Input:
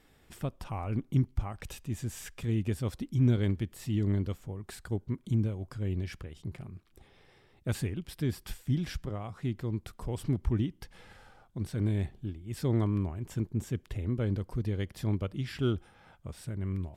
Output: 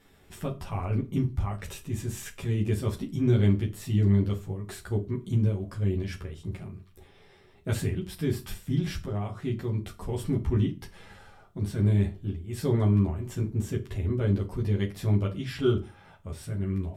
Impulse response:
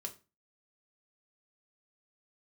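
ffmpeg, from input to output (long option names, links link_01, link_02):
-filter_complex "[0:a]bandreject=frequency=4800:width=27,asplit=2[link_01][link_02];[1:a]atrim=start_sample=2205,adelay=11[link_03];[link_02][link_03]afir=irnorm=-1:irlink=0,volume=4dB[link_04];[link_01][link_04]amix=inputs=2:normalize=0"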